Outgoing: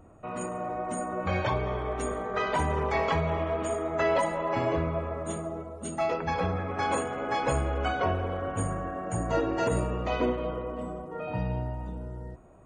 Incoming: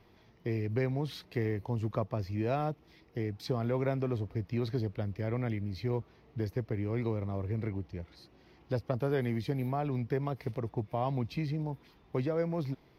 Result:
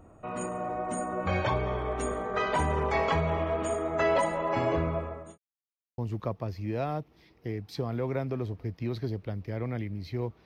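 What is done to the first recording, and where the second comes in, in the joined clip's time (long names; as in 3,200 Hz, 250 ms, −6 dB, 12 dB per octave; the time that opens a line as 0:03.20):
outgoing
0:04.93–0:05.38: fade out linear
0:05.38–0:05.98: silence
0:05.98: continue with incoming from 0:01.69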